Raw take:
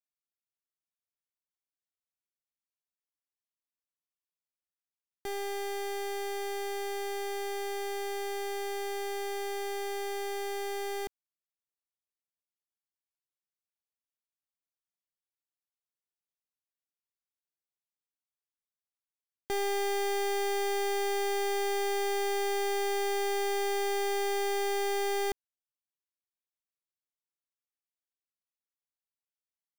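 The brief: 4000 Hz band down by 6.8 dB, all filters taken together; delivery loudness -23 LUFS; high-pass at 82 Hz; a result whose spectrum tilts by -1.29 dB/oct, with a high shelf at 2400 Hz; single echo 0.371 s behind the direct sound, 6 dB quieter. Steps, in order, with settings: HPF 82 Hz; high shelf 2400 Hz -6.5 dB; bell 4000 Hz -3 dB; echo 0.371 s -6 dB; gain +12 dB

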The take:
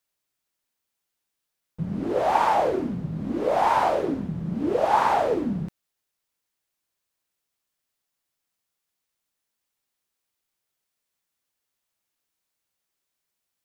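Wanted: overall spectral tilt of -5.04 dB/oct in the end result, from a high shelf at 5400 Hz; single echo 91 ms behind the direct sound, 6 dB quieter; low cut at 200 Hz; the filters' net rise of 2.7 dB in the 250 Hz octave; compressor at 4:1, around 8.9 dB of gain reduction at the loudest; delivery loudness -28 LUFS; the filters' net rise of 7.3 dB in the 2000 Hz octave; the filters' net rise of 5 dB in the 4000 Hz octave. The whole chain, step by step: HPF 200 Hz; bell 250 Hz +5.5 dB; bell 2000 Hz +9 dB; bell 4000 Hz +4 dB; high shelf 5400 Hz -3 dB; compressor 4:1, threshold -25 dBFS; echo 91 ms -6 dB; gain -0.5 dB

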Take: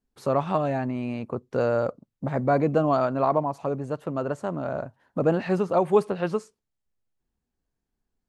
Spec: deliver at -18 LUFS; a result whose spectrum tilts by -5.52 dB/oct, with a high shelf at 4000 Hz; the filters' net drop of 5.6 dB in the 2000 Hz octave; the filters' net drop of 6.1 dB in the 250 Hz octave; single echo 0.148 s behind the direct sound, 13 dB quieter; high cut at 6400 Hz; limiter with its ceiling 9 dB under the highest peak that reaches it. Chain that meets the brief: LPF 6400 Hz; bell 250 Hz -8.5 dB; bell 2000 Hz -6.5 dB; high shelf 4000 Hz -8.5 dB; limiter -19.5 dBFS; echo 0.148 s -13 dB; gain +13 dB

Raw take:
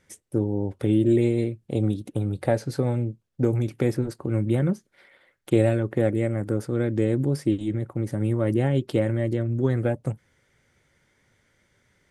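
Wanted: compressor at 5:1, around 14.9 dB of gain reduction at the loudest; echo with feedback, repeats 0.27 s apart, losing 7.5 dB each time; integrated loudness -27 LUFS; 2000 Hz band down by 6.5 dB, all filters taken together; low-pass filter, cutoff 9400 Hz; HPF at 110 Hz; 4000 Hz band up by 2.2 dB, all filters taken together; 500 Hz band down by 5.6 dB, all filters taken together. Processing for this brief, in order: HPF 110 Hz; LPF 9400 Hz; bell 500 Hz -7.5 dB; bell 2000 Hz -9 dB; bell 4000 Hz +6 dB; compressor 5:1, threshold -36 dBFS; feedback echo 0.27 s, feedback 42%, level -7.5 dB; gain +12.5 dB

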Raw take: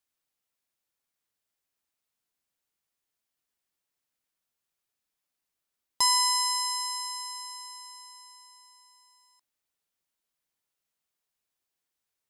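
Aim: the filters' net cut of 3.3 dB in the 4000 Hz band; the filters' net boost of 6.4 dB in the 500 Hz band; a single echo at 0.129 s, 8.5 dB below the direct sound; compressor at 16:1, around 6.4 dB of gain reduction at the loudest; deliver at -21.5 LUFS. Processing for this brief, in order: bell 500 Hz +8 dB; bell 4000 Hz -5 dB; compressor 16:1, threshold -26 dBFS; echo 0.129 s -8.5 dB; gain +10 dB

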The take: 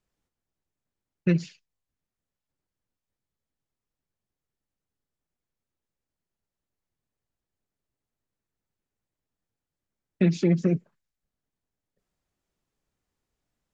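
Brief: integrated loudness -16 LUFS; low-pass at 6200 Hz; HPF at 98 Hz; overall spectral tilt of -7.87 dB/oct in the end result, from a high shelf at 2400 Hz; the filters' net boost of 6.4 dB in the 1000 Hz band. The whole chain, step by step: HPF 98 Hz; LPF 6200 Hz; bell 1000 Hz +9 dB; high shelf 2400 Hz +3.5 dB; gain +9 dB

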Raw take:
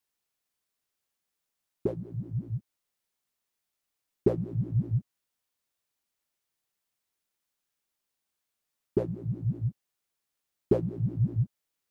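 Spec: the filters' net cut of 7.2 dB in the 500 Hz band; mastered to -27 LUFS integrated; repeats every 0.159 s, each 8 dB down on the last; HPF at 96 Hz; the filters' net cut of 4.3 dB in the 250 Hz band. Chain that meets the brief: HPF 96 Hz; bell 250 Hz -4 dB; bell 500 Hz -8 dB; feedback echo 0.159 s, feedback 40%, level -8 dB; gain +8.5 dB

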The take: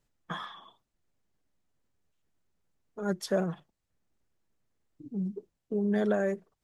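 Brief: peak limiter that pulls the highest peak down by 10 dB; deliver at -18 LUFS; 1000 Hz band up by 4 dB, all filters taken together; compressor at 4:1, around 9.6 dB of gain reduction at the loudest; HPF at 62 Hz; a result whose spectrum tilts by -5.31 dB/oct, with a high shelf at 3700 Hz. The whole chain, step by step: HPF 62 Hz; bell 1000 Hz +5 dB; high shelf 3700 Hz +7.5 dB; compressor 4:1, threshold -33 dBFS; gain +25 dB; limiter -7.5 dBFS

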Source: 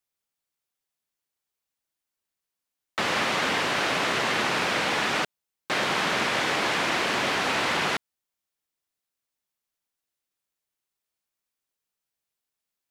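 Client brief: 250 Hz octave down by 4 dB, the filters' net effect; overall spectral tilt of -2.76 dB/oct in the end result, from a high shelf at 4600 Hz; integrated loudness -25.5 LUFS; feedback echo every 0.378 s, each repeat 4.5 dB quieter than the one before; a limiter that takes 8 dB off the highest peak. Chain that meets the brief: bell 250 Hz -5.5 dB; high shelf 4600 Hz +8.5 dB; limiter -19.5 dBFS; feedback echo 0.378 s, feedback 60%, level -4.5 dB; gain +1 dB

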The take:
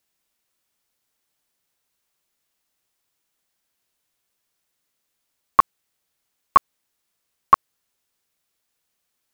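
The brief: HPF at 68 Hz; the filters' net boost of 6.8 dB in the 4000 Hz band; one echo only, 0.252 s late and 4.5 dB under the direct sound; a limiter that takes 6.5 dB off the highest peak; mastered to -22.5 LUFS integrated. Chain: HPF 68 Hz; bell 4000 Hz +9 dB; limiter -8 dBFS; echo 0.252 s -4.5 dB; gain +4.5 dB

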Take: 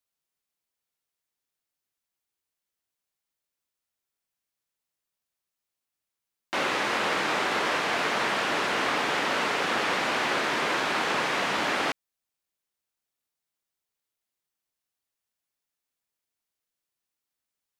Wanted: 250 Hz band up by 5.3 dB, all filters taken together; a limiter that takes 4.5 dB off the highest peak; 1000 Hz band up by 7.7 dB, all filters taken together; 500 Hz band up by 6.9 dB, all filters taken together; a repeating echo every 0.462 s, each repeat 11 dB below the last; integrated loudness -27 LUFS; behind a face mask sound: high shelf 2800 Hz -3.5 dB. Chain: bell 250 Hz +4.5 dB; bell 500 Hz +5 dB; bell 1000 Hz +8.5 dB; limiter -12.5 dBFS; high shelf 2800 Hz -3.5 dB; feedback echo 0.462 s, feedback 28%, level -11 dB; gain -5 dB

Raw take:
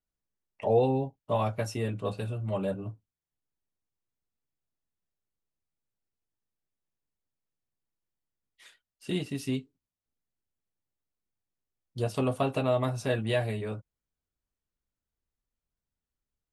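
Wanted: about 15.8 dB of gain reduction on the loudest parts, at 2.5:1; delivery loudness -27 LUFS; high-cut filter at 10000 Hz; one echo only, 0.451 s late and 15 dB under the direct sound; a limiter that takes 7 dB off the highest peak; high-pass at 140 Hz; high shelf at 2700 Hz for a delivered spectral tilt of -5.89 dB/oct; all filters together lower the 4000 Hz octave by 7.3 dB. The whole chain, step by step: HPF 140 Hz; LPF 10000 Hz; high shelf 2700 Hz -3.5 dB; bell 4000 Hz -7 dB; compressor 2.5:1, threshold -44 dBFS; limiter -34 dBFS; echo 0.451 s -15 dB; gain +18.5 dB

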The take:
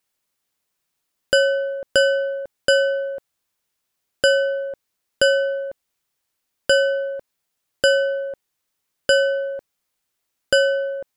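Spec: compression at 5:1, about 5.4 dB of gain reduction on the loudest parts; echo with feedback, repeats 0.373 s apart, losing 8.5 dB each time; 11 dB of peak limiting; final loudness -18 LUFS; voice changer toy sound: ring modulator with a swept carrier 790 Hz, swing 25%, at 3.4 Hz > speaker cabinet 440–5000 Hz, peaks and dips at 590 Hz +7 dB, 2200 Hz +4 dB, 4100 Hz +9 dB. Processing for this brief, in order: compressor 5:1, threshold -17 dBFS; limiter -16.5 dBFS; feedback echo 0.373 s, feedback 38%, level -8.5 dB; ring modulator with a swept carrier 790 Hz, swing 25%, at 3.4 Hz; speaker cabinet 440–5000 Hz, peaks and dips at 590 Hz +7 dB, 2200 Hz +4 dB, 4100 Hz +9 dB; gain +10 dB

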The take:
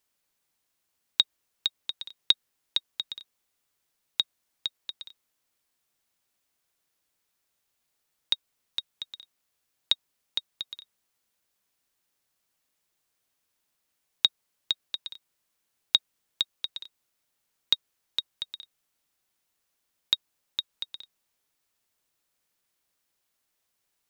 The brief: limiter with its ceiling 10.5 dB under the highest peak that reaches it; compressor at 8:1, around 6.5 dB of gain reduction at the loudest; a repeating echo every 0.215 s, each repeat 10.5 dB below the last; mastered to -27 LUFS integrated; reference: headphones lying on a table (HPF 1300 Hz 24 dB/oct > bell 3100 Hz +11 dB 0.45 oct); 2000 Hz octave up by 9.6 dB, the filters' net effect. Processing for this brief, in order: bell 2000 Hz +8.5 dB; compressor 8:1, threshold -23 dBFS; limiter -13.5 dBFS; HPF 1300 Hz 24 dB/oct; bell 3100 Hz +11 dB 0.45 oct; feedback echo 0.215 s, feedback 30%, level -10.5 dB; gain +6 dB

